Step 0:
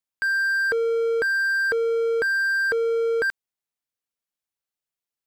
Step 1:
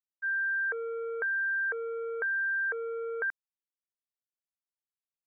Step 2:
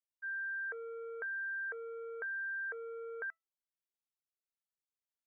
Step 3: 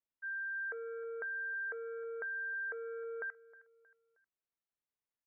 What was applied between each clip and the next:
Butterworth low-pass 2,000 Hz 36 dB per octave; downward expander −17 dBFS; high-pass filter 660 Hz 12 dB per octave
tuned comb filter 660 Hz, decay 0.17 s, harmonics all, mix 60%; level −1.5 dB
high-frequency loss of the air 410 metres; repeating echo 314 ms, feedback 41%, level −20 dB; level +2.5 dB

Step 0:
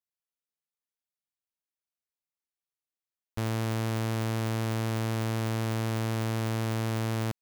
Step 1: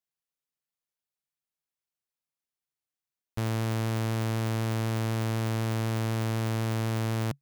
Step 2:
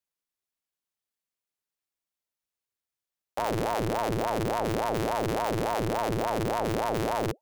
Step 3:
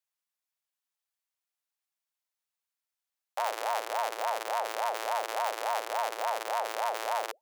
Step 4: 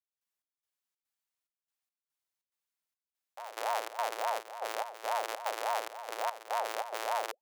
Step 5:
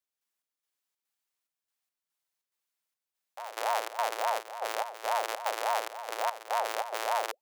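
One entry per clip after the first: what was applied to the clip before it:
parametric band 140 Hz +7.5 dB 0.3 octaves
ring modulator whose carrier an LFO sweeps 520 Hz, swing 60%, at 3.5 Hz; level +3.5 dB
high-pass filter 630 Hz 24 dB per octave
gate pattern "..xx..xxx.xxxx" 143 BPM −12 dB; level −1.5 dB
low-shelf EQ 160 Hz −10 dB; level +3.5 dB

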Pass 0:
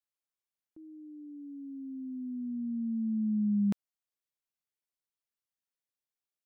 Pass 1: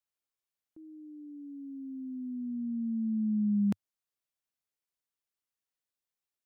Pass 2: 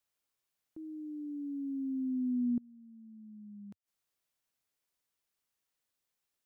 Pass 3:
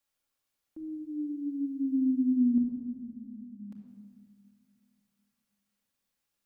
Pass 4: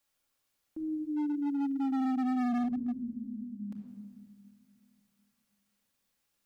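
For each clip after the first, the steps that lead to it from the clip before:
dynamic equaliser 100 Hz, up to +4 dB, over −50 dBFS, Q 2
gate with flip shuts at −32 dBFS, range −27 dB; level +5.5 dB
rectangular room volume 3,100 cubic metres, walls mixed, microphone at 2.3 metres
hard clipping −32.5 dBFS, distortion −5 dB; level +4 dB

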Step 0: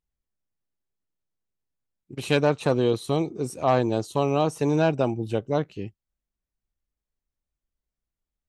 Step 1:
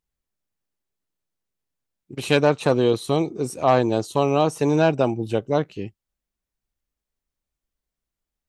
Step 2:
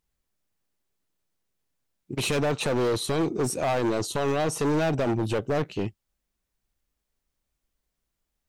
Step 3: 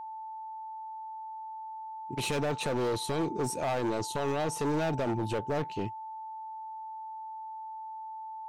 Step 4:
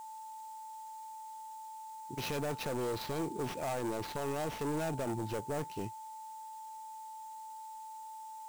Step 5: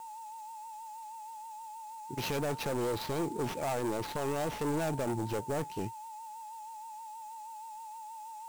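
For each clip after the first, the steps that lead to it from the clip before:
low-shelf EQ 150 Hz −4.5 dB; level +4 dB
brickwall limiter −14.5 dBFS, peak gain reduction 10.5 dB; hard clipping −26 dBFS, distortion −6 dB; level +4.5 dB
steady tone 880 Hz −33 dBFS; level −5.5 dB
sample-rate reduction 8,500 Hz, jitter 20%; level −5.5 dB
in parallel at −8 dB: slack as between gear wheels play −45 dBFS; on the sum: pitch vibrato 6.3 Hz 63 cents

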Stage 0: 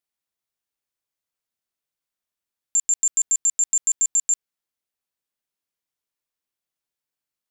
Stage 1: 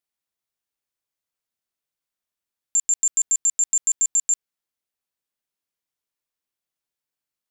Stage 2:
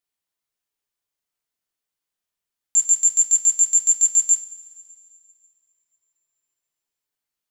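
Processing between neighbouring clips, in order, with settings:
no processing that can be heard
coupled-rooms reverb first 0.33 s, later 2.5 s, from −18 dB, DRR 3 dB

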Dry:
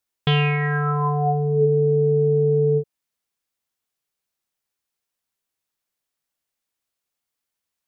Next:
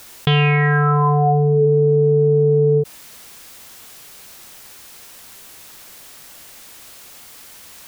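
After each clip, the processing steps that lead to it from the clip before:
envelope flattener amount 70%
level +2 dB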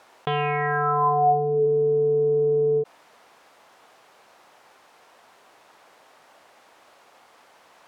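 resonant band-pass 770 Hz, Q 1.2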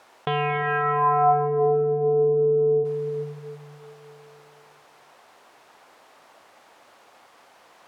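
convolution reverb RT60 2.5 s, pre-delay 217 ms, DRR 7 dB

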